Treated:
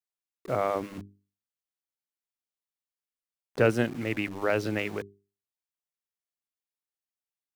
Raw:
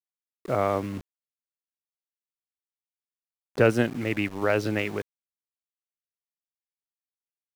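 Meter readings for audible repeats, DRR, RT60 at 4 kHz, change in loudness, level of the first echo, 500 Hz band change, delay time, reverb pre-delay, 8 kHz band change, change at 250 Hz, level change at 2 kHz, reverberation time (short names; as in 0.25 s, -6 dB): none, none, none, -2.5 dB, none, -2.5 dB, none, none, -2.5 dB, -3.5 dB, -2.5 dB, none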